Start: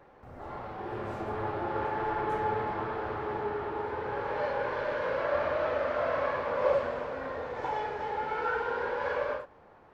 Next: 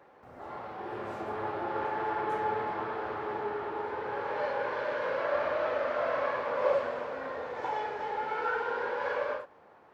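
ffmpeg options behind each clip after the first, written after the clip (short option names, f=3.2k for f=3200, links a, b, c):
-af "highpass=f=260:p=1"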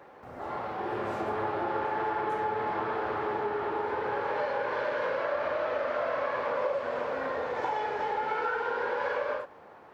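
-af "acompressor=threshold=-33dB:ratio=6,volume=6dB"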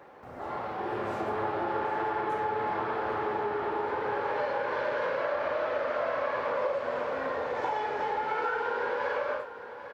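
-af "aecho=1:1:798:0.224"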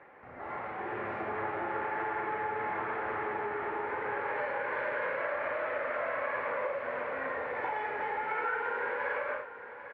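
-af "lowpass=f=2.1k:t=q:w=3,volume=-5.5dB"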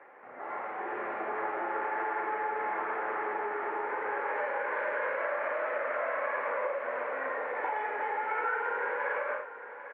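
-af "highpass=350,lowpass=2.4k,volume=2dB"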